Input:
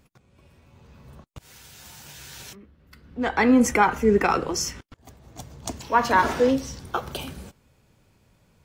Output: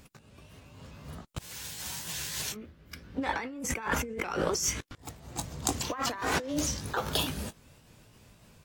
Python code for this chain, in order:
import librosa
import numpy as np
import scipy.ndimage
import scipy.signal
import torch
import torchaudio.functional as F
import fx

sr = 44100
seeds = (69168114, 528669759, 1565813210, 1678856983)

y = fx.pitch_ramps(x, sr, semitones=2.5, every_ms=303)
y = fx.high_shelf(y, sr, hz=2300.0, db=5.0)
y = fx.over_compress(y, sr, threshold_db=-30.0, ratio=-1.0)
y = y * 10.0 ** (-2.5 / 20.0)